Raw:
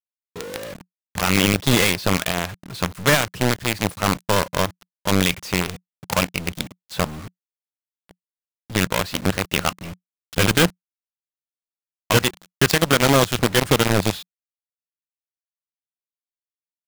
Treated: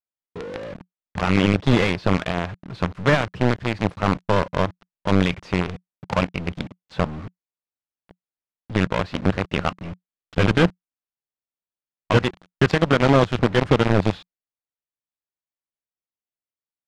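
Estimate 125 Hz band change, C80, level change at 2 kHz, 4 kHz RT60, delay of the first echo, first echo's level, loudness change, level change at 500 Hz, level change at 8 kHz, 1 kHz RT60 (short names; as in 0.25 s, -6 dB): +1.5 dB, none, -3.5 dB, none, none, none, -1.5 dB, +0.5 dB, -18.0 dB, none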